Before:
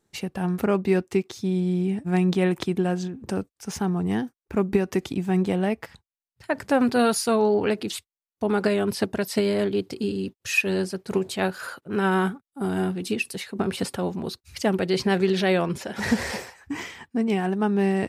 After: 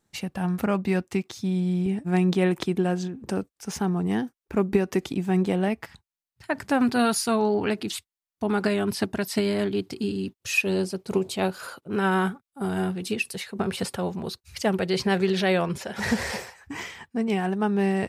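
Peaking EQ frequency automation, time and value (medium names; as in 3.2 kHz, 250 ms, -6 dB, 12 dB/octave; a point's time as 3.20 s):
peaking EQ -7 dB 0.5 oct
400 Hz
from 1.86 s 94 Hz
from 5.68 s 500 Hz
from 10.42 s 1.7 kHz
from 11.96 s 290 Hz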